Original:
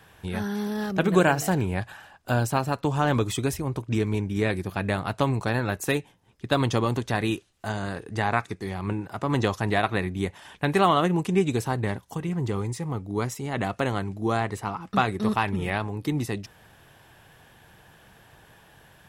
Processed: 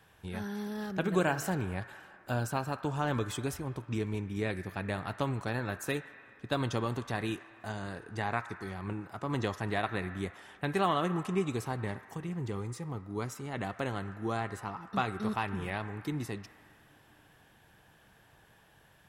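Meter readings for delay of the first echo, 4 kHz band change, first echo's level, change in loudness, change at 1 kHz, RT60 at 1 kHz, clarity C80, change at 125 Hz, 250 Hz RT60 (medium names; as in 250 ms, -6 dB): no echo, -8.5 dB, no echo, -8.5 dB, -8.0 dB, 2.6 s, 11.5 dB, -8.5 dB, 5.4 s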